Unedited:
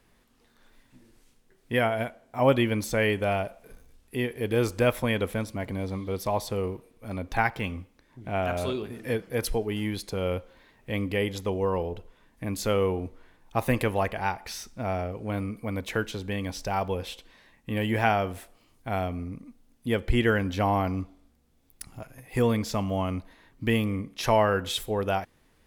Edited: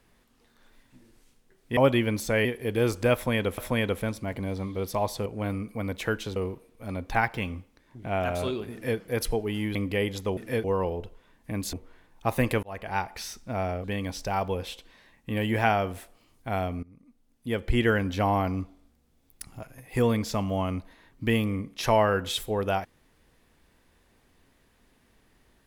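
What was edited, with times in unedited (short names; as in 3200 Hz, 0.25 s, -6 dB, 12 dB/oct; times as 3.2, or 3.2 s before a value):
1.77–2.41 cut
3.09–4.21 cut
4.9–5.34 loop, 2 plays
8.94–9.21 copy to 11.57
9.97–10.95 cut
12.66–13.03 cut
13.93–14.29 fade in
15.14–16.24 move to 6.58
19.23–20.23 fade in, from -22 dB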